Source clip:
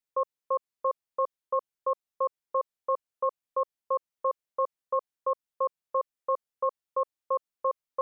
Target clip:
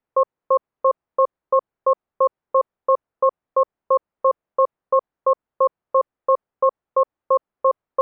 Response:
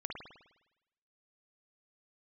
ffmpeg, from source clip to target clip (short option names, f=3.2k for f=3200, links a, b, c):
-filter_complex "[0:a]lowpass=1.2k,asplit=2[a][b];[b]alimiter=level_in=5.5dB:limit=-24dB:level=0:latency=1,volume=-5.5dB,volume=0dB[c];[a][c]amix=inputs=2:normalize=0,volume=9dB"